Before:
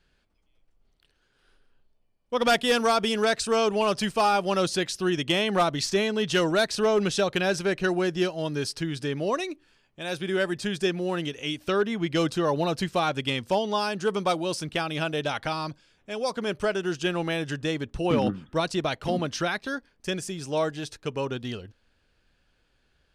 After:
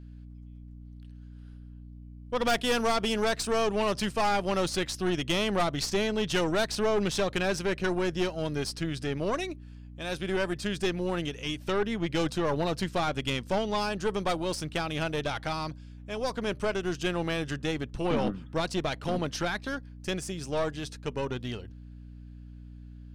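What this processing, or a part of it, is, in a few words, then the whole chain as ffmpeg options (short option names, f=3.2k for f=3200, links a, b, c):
valve amplifier with mains hum: -af "aeval=exprs='(tanh(11.2*val(0)+0.55)-tanh(0.55))/11.2':c=same,aeval=exprs='val(0)+0.00631*(sin(2*PI*60*n/s)+sin(2*PI*2*60*n/s)/2+sin(2*PI*3*60*n/s)/3+sin(2*PI*4*60*n/s)/4+sin(2*PI*5*60*n/s)/5)':c=same"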